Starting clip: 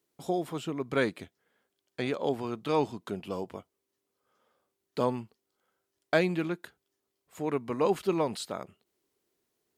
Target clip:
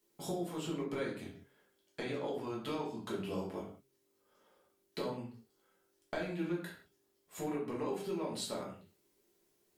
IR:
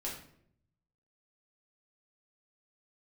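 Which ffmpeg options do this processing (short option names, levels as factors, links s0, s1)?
-filter_complex "[0:a]acompressor=threshold=0.0141:ratio=16,highshelf=f=5100:g=5,bandreject=f=135.2:t=h:w=4,bandreject=f=270.4:t=h:w=4,bandreject=f=405.6:t=h:w=4[s0];[1:a]atrim=start_sample=2205,afade=t=out:st=0.25:d=0.01,atrim=end_sample=11466[s1];[s0][s1]afir=irnorm=-1:irlink=0,volume=1.19"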